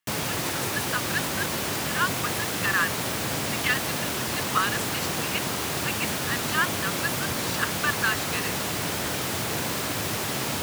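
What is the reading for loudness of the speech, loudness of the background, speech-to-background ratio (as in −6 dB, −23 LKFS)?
−30.0 LKFS, −27.0 LKFS, −3.0 dB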